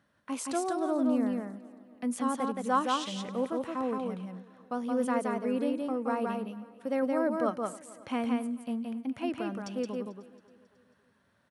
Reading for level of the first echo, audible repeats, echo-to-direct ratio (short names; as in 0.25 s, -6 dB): -3.0 dB, 7, -3.0 dB